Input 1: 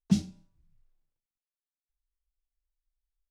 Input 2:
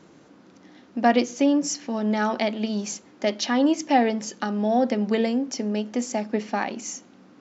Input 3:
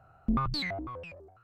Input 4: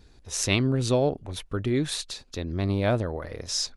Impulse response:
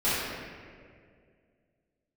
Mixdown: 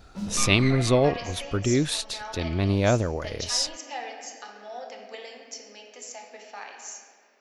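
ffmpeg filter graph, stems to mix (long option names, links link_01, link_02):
-filter_complex "[0:a]asoftclip=type=tanh:threshold=-29dB,adelay=50,volume=-9dB,asplit=2[link_01][link_02];[link_02]volume=-6.5dB[link_03];[1:a]highpass=640,aemphasis=mode=production:type=bsi,volume=-14.5dB,asplit=2[link_04][link_05];[link_05]volume=-13.5dB[link_06];[2:a]highpass=500,highshelf=frequency=2600:width_type=q:width=1.5:gain=-12,aeval=exprs='0.112*(cos(1*acos(clip(val(0)/0.112,-1,1)))-cos(1*PI/2))+0.0398*(cos(3*acos(clip(val(0)/0.112,-1,1)))-cos(3*PI/2))+0.0398*(cos(5*acos(clip(val(0)/0.112,-1,1)))-cos(5*PI/2))+0.0316*(cos(6*acos(clip(val(0)/0.112,-1,1)))-cos(6*PI/2))':channel_layout=same,volume=-5dB,asplit=2[link_07][link_08];[link_08]volume=-11.5dB[link_09];[3:a]volume=2.5dB[link_10];[4:a]atrim=start_sample=2205[link_11];[link_03][link_06][link_09]amix=inputs=3:normalize=0[link_12];[link_12][link_11]afir=irnorm=-1:irlink=0[link_13];[link_01][link_04][link_07][link_10][link_13]amix=inputs=5:normalize=0,equalizer=frequency=2700:width_type=o:width=0.33:gain=3"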